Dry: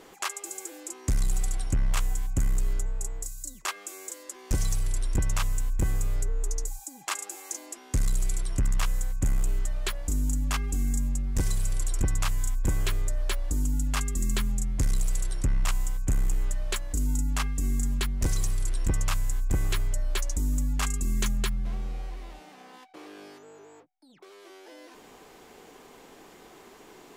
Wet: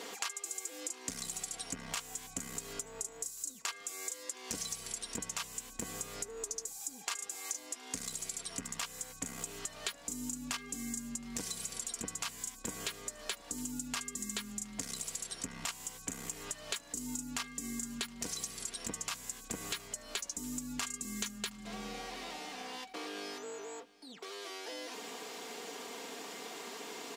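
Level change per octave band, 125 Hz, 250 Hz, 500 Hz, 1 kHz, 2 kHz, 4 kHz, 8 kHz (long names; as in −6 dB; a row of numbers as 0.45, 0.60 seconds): −24.0, −7.0, −4.0, −5.5, −5.0, −1.5, −1.5 decibels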